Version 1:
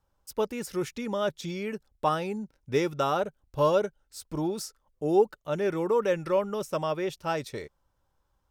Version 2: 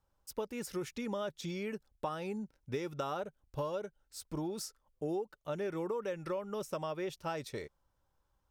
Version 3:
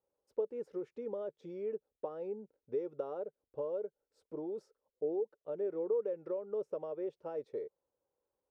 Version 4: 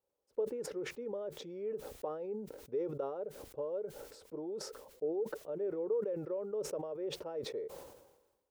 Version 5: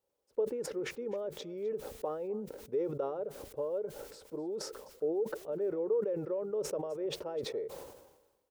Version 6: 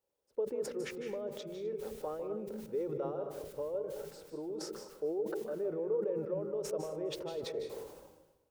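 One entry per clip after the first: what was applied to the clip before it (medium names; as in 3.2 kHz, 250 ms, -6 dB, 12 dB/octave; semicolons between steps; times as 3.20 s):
compression 12:1, threshold -29 dBFS, peak gain reduction 13.5 dB; trim -4 dB
band-pass filter 460 Hz, Q 4; trim +5.5 dB
decay stretcher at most 54 dB/s; trim -1 dB
delay 256 ms -21.5 dB; trim +3 dB
reverberation RT60 0.55 s, pre-delay 152 ms, DRR 6.5 dB; trim -3 dB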